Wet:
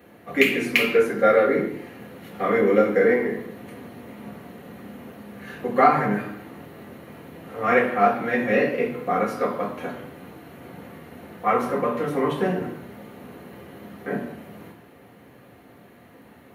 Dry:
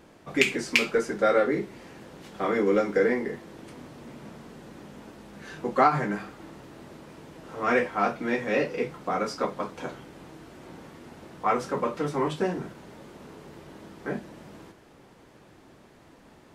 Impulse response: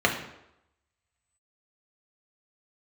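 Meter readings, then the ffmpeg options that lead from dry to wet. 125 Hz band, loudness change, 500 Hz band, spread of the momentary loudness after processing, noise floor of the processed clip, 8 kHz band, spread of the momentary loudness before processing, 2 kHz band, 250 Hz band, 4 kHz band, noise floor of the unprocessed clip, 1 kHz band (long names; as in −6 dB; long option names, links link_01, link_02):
+3.5 dB, +4.5 dB, +5.5 dB, 23 LU, −50 dBFS, can't be measured, 23 LU, +4.5 dB, +4.5 dB, +1.5 dB, −54 dBFS, +4.5 dB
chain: -filter_complex "[0:a]aexciter=amount=12.9:drive=4.5:freq=10000[link_01];[1:a]atrim=start_sample=2205,afade=type=out:start_time=0.34:duration=0.01,atrim=end_sample=15435[link_02];[link_01][link_02]afir=irnorm=-1:irlink=0,volume=-11.5dB"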